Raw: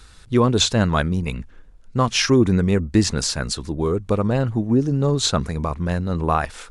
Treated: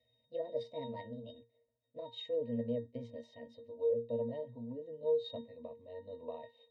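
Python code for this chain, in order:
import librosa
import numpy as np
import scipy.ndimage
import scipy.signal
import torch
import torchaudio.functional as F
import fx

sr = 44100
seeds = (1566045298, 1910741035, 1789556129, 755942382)

y = fx.pitch_glide(x, sr, semitones=6.0, runs='ending unshifted')
y = fx.double_bandpass(y, sr, hz=1400.0, octaves=2.3)
y = fx.octave_resonator(y, sr, note='A#', decay_s=0.23)
y = F.gain(torch.from_numpy(y), 10.0).numpy()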